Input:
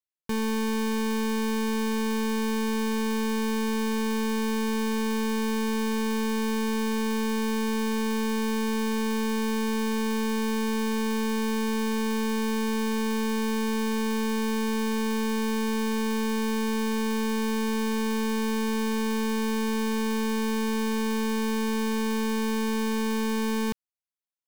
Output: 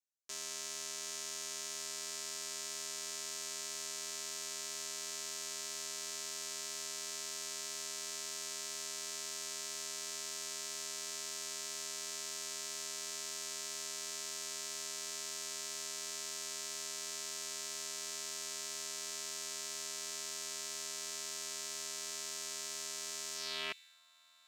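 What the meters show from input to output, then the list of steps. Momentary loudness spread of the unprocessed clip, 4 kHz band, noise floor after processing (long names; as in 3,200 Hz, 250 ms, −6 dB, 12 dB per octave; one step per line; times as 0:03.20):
0 LU, −5.0 dB, −44 dBFS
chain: delay with a high-pass on its return 749 ms, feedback 79%, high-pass 5,000 Hz, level −11 dB
ring modulation 180 Hz
band-pass filter sweep 6,600 Hz → 1,200 Hz, 0:23.34–0:24.01
level +7 dB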